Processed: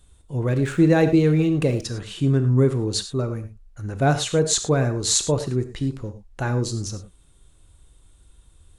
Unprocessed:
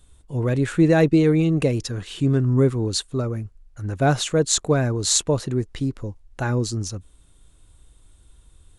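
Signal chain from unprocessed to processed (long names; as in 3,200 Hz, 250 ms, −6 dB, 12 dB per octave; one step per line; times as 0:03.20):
reverb whose tail is shaped and stops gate 130 ms flat, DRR 8.5 dB
0:00.50–0:01.82: slack as between gear wheels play −43 dBFS
level −1 dB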